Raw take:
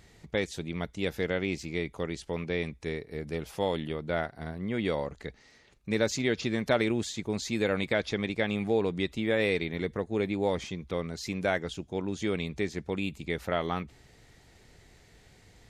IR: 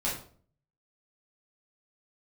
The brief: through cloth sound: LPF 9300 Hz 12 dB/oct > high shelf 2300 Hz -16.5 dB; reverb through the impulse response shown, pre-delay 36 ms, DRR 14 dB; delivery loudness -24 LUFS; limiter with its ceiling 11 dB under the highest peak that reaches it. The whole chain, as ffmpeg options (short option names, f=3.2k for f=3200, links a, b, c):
-filter_complex "[0:a]alimiter=limit=-23.5dB:level=0:latency=1,asplit=2[a][b];[1:a]atrim=start_sample=2205,adelay=36[c];[b][c]afir=irnorm=-1:irlink=0,volume=-21dB[d];[a][d]amix=inputs=2:normalize=0,lowpass=9.3k,highshelf=f=2.3k:g=-16.5,volume=13dB"